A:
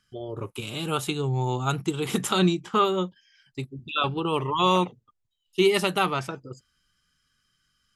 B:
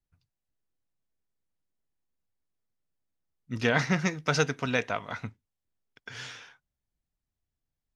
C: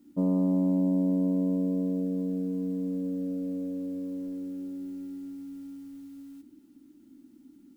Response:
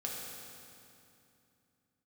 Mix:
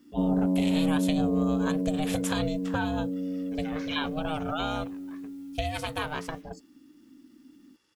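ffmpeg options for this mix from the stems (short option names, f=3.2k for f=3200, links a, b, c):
-filter_complex "[0:a]volume=2.5dB,asplit=2[a][b];[1:a]aecho=1:1:2.2:0.84,volume=-7.5dB[c];[2:a]volume=0dB[d];[b]apad=whole_len=350956[e];[c][e]sidechaincompress=threshold=-34dB:ratio=8:attack=9.4:release=466[f];[a][f]amix=inputs=2:normalize=0,aeval=exprs='val(0)*sin(2*PI*310*n/s)':c=same,acompressor=threshold=-28dB:ratio=6,volume=0dB[g];[d][g]amix=inputs=2:normalize=0"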